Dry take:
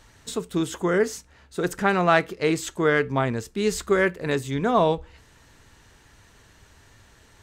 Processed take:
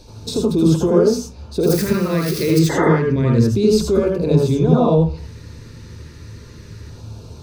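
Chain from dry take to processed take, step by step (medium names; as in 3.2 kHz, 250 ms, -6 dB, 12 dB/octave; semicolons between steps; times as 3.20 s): 1.63–2.59 s: zero-crossing glitches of -21 dBFS; in parallel at +0.5 dB: compression, threshold -29 dBFS, peak gain reduction 15 dB; on the sum: peak limiter -16.5 dBFS, peak gain reduction 11 dB; LFO notch square 0.29 Hz 760–1900 Hz; 2.69–2.89 s: painted sound noise 260–2100 Hz -23 dBFS; reverberation RT60 0.30 s, pre-delay 73 ms, DRR -1.5 dB; trim -2.5 dB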